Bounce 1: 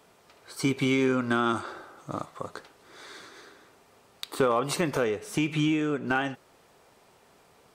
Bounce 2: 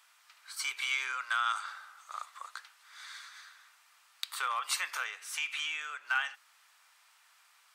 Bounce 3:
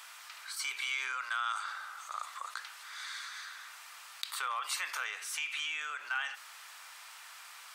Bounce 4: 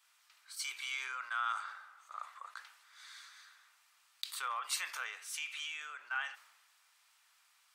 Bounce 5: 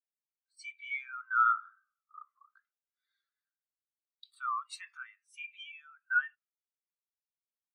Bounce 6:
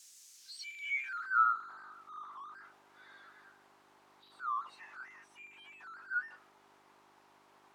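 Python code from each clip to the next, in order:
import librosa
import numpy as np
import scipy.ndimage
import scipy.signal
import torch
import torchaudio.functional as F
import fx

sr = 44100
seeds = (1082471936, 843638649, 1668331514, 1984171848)

y1 = scipy.signal.sosfilt(scipy.signal.butter(4, 1200.0, 'highpass', fs=sr, output='sos'), x)
y2 = fx.env_flatten(y1, sr, amount_pct=50)
y2 = F.gain(torch.from_numpy(y2), -5.0).numpy()
y3 = fx.band_widen(y2, sr, depth_pct=100)
y3 = F.gain(torch.from_numpy(y3), -5.5).numpy()
y4 = scipy.signal.sosfilt(scipy.signal.butter(4, 850.0, 'highpass', fs=sr, output='sos'), y3)
y4 = fx.spectral_expand(y4, sr, expansion=2.5)
y4 = F.gain(torch.from_numpy(y4), 2.5).numpy()
y5 = y4 + 0.5 * 10.0 ** (-38.0 / 20.0) * np.sign(y4)
y5 = fx.dmg_buzz(y5, sr, base_hz=50.0, harmonics=8, level_db=-56.0, tilt_db=0, odd_only=False)
y5 = fx.filter_sweep_bandpass(y5, sr, from_hz=6600.0, to_hz=900.0, start_s=0.32, end_s=1.55, q=2.2)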